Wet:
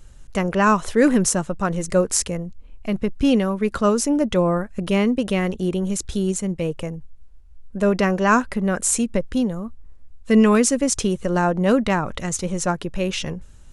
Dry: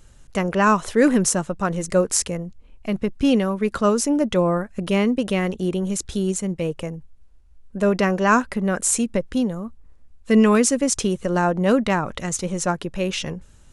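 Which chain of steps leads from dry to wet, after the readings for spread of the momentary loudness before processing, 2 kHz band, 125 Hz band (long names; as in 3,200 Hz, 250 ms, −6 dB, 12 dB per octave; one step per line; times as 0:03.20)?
11 LU, 0.0 dB, +1.0 dB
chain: low-shelf EQ 71 Hz +7 dB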